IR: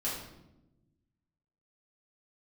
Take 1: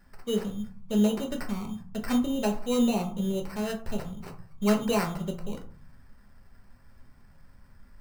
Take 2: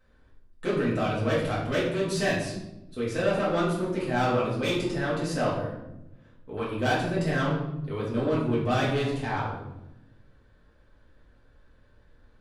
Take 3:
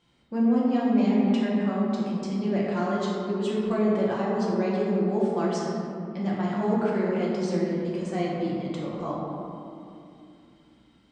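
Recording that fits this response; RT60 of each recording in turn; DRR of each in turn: 2; 0.55, 0.95, 2.6 seconds; 2.0, −8.0, −6.0 decibels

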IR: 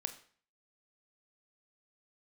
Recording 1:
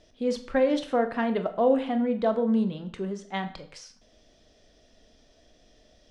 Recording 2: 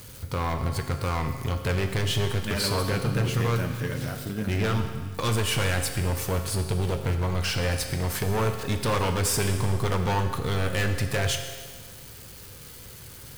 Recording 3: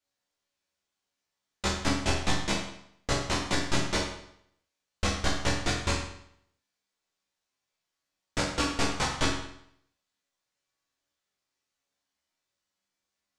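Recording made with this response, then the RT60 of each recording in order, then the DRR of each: 1; 0.45, 1.6, 0.70 seconds; 8.0, 5.5, −4.5 decibels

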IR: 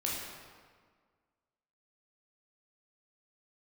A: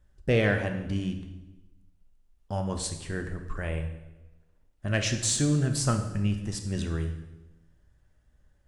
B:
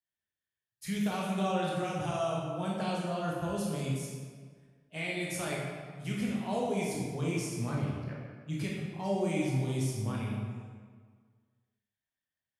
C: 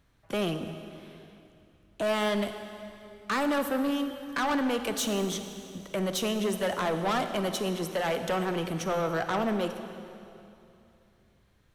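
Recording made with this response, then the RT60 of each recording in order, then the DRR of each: B; 1.1, 1.7, 2.8 seconds; 5.0, −4.5, 8.0 decibels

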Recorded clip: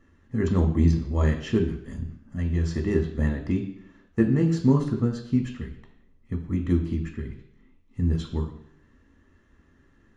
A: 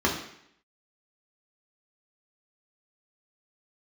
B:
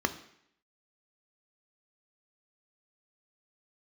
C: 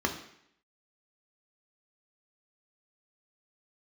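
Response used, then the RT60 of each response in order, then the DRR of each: C; 0.70, 0.70, 0.70 seconds; −3.0, 8.0, 2.0 decibels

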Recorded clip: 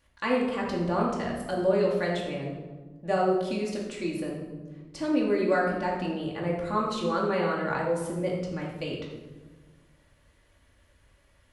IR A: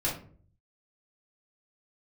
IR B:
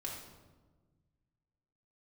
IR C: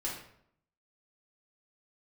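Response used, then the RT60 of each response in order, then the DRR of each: B; 0.50, 1.3, 0.70 seconds; −6.5, −3.5, −5.5 decibels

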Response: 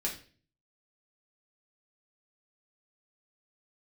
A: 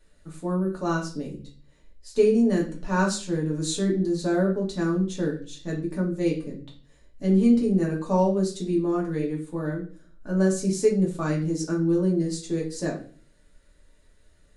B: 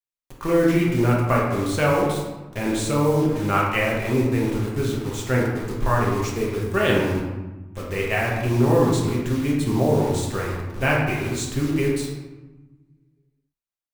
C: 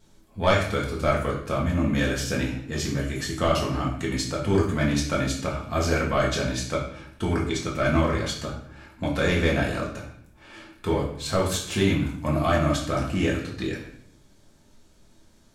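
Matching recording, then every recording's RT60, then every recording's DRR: A; 0.40, 1.1, 0.65 seconds; −3.5, −3.5, −3.5 decibels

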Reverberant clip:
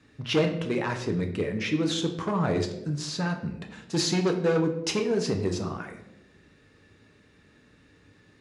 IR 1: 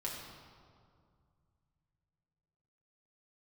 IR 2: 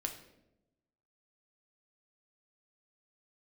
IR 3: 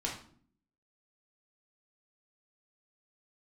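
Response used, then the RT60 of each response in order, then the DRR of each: 2; 2.2, 0.90, 0.55 seconds; −4.0, 3.5, −3.5 decibels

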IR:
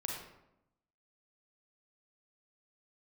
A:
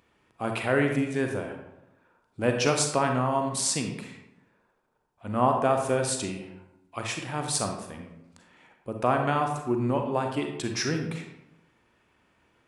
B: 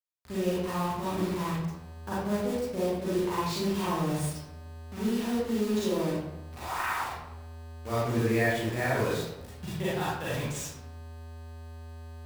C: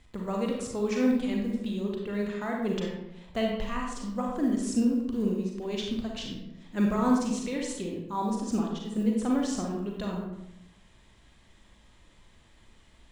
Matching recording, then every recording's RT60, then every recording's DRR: C; 0.85, 0.85, 0.85 seconds; 3.5, −10.0, −1.0 decibels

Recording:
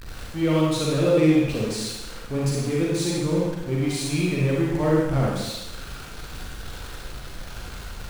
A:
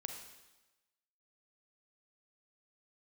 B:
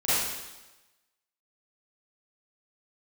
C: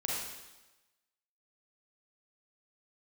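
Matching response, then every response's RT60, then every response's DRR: C; 1.1, 1.1, 1.1 seconds; 4.0, −14.5, −4.5 decibels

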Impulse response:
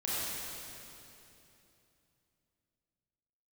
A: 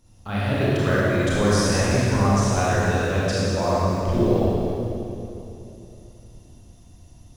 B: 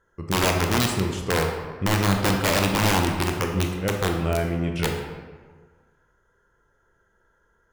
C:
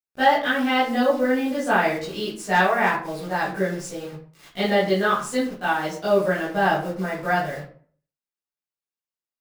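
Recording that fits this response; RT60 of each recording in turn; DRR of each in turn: A; 3.0, 1.6, 0.50 seconds; −9.0, 2.0, −12.0 decibels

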